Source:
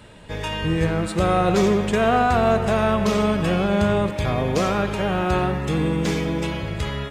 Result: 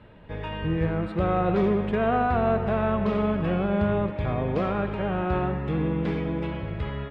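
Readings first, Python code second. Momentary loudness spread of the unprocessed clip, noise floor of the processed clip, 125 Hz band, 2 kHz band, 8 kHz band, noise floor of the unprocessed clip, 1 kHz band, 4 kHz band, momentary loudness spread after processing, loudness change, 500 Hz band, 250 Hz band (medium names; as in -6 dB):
8 LU, -36 dBFS, -3.5 dB, -7.5 dB, under -30 dB, -31 dBFS, -5.5 dB, -13.0 dB, 9 LU, -4.5 dB, -4.5 dB, -4.0 dB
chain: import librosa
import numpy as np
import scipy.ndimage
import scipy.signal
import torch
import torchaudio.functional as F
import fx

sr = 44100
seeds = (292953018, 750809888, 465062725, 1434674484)

y = fx.air_absorb(x, sr, metres=450.0)
y = y * 10.0 ** (-3.5 / 20.0)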